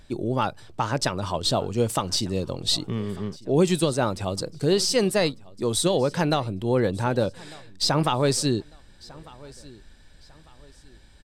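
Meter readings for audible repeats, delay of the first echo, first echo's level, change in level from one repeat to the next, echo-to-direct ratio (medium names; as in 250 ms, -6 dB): 2, 1199 ms, -22.5 dB, -9.5 dB, -22.0 dB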